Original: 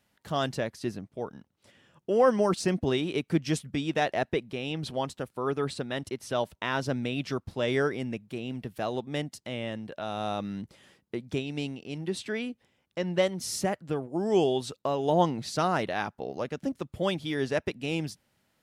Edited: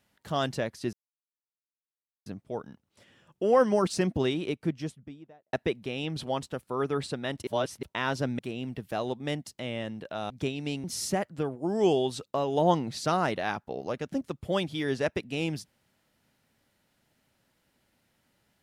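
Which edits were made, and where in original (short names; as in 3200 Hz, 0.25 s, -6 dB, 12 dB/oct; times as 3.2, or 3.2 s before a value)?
0.93 insert silence 1.33 s
2.81–4.2 studio fade out
6.14–6.5 reverse
7.06–8.26 cut
10.17–11.21 cut
11.75–13.35 cut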